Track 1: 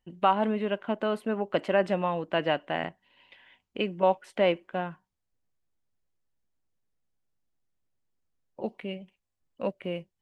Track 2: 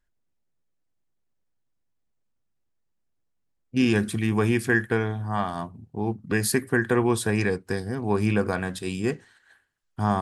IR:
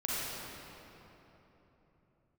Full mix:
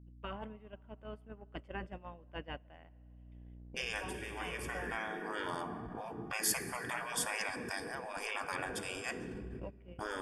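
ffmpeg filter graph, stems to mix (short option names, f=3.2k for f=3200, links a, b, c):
-filter_complex "[0:a]volume=-14dB,asplit=3[a][b][c];[b]volume=-22.5dB[d];[1:a]agate=range=-33dB:threshold=-51dB:ratio=3:detection=peak,aeval=exprs='val(0)+0.0141*(sin(2*PI*60*n/s)+sin(2*PI*2*60*n/s)/2+sin(2*PI*3*60*n/s)/3+sin(2*PI*4*60*n/s)/4+sin(2*PI*5*60*n/s)/5)':c=same,volume=-3dB,asplit=2[e][f];[f]volume=-18.5dB[g];[c]apad=whole_len=450553[h];[e][h]sidechaincompress=threshold=-46dB:ratio=8:attack=36:release=622[i];[2:a]atrim=start_sample=2205[j];[d][g]amix=inputs=2:normalize=0[k];[k][j]afir=irnorm=-1:irlink=0[l];[a][i][l]amix=inputs=3:normalize=0,agate=range=-15dB:threshold=-37dB:ratio=16:detection=peak,afftfilt=real='re*lt(hypot(re,im),0.0794)':imag='im*lt(hypot(re,im),0.0794)':win_size=1024:overlap=0.75,asuperstop=centerf=4000:order=4:qfactor=5.9"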